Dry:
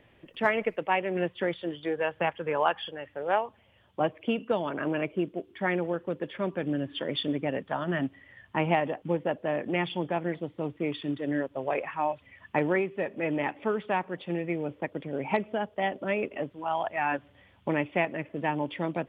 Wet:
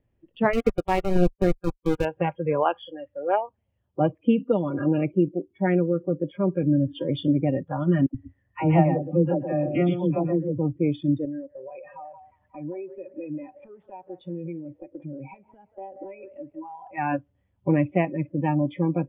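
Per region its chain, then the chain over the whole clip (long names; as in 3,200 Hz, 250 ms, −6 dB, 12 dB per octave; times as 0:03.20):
0:00.53–0:02.05: low-shelf EQ 320 Hz +4.5 dB + centre clipping without the shift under −25 dBFS
0:08.06–0:10.59: high-frequency loss of the air 130 metres + all-pass dispersion lows, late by 84 ms, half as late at 740 Hz + single-tap delay 123 ms −7 dB
0:11.25–0:16.91: downward compressor 4 to 1, threshold −38 dBFS + delay with a band-pass on its return 179 ms, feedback 45%, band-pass 1,100 Hz, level −7 dB
whole clip: noise reduction from a noise print of the clip's start 22 dB; spectral tilt −4 dB per octave; level +1.5 dB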